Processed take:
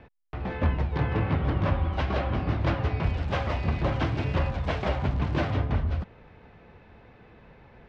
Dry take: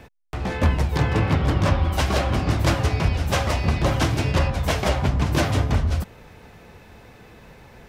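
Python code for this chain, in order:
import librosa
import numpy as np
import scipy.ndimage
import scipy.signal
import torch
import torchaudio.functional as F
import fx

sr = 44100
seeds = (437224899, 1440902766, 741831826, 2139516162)

y = fx.crossing_spikes(x, sr, level_db=-20.0, at=(3.03, 5.52))
y = scipy.signal.sosfilt(scipy.signal.bessel(4, 2600.0, 'lowpass', norm='mag', fs=sr, output='sos'), y)
y = y * librosa.db_to_amplitude(-5.5)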